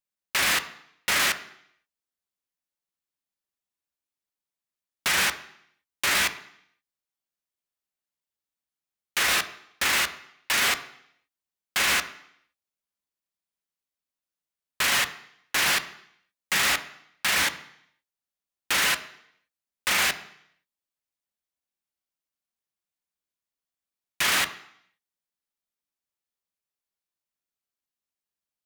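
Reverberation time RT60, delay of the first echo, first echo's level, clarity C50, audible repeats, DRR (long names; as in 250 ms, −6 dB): 0.70 s, no echo audible, no echo audible, 14.0 dB, no echo audible, 9.0 dB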